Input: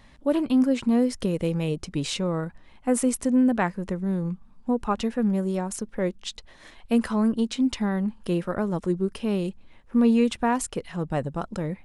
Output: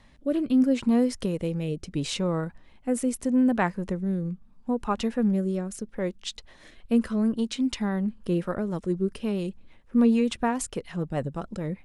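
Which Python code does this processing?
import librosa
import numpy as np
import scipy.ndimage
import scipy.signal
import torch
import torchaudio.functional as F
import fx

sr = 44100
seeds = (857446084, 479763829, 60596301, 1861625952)

y = fx.rotary_switch(x, sr, hz=0.75, then_hz=6.7, switch_at_s=8.13)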